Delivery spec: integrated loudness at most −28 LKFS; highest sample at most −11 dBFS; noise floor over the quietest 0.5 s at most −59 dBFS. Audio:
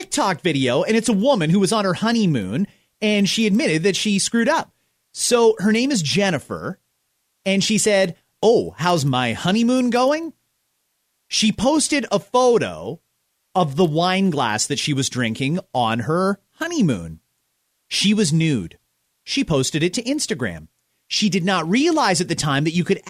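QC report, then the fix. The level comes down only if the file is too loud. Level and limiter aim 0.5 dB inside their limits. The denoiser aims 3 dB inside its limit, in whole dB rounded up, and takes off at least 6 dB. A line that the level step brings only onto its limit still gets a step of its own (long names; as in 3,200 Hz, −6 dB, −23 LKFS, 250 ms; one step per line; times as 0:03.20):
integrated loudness −19.0 LKFS: out of spec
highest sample −5.0 dBFS: out of spec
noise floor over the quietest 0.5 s −71 dBFS: in spec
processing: level −9.5 dB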